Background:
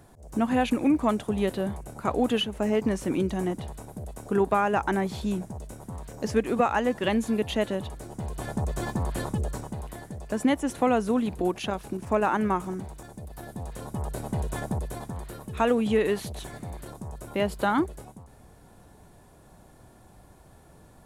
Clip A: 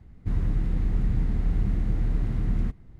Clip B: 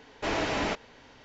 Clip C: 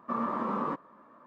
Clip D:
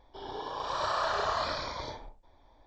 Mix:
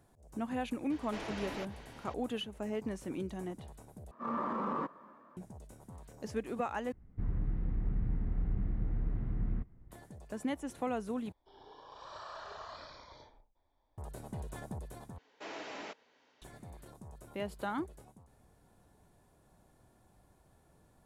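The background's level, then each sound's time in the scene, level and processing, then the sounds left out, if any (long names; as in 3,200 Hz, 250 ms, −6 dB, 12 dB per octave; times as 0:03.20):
background −12.5 dB
0:00.90: mix in B −0.5 dB + downward compressor 2 to 1, threshold −49 dBFS
0:04.11: overwrite with C −3.5 dB + transient designer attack −9 dB, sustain +4 dB
0:06.92: overwrite with A −9 dB + low-pass filter 1,800 Hz
0:11.32: overwrite with D −16.5 dB
0:15.18: overwrite with B −14.5 dB + high-pass filter 270 Hz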